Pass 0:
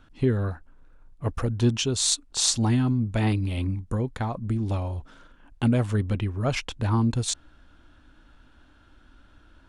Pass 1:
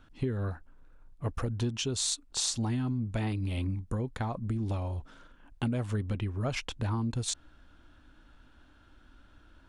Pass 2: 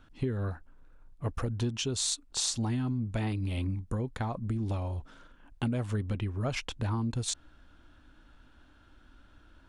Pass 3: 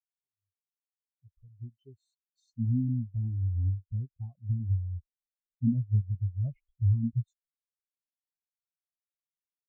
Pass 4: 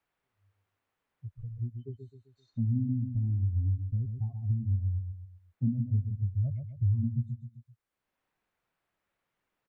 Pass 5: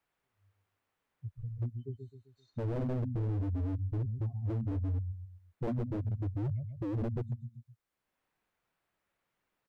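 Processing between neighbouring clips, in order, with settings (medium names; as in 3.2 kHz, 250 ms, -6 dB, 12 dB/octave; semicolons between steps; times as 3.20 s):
compression 4:1, threshold -25 dBFS, peak gain reduction 8.5 dB; trim -3 dB
no audible change
fade-in on the opening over 2.65 s; spectral contrast expander 4:1; trim -2 dB
feedback delay 130 ms, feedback 31%, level -8.5 dB; three bands compressed up and down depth 70%
wavefolder -28 dBFS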